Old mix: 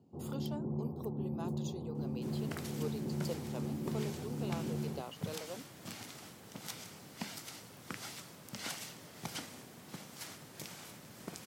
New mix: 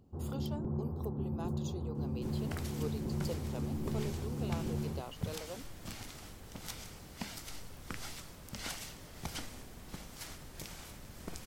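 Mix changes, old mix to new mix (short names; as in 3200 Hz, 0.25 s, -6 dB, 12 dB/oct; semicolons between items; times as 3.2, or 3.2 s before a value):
first sound: remove LPF 1000 Hz 24 dB/oct; master: remove HPF 120 Hz 24 dB/oct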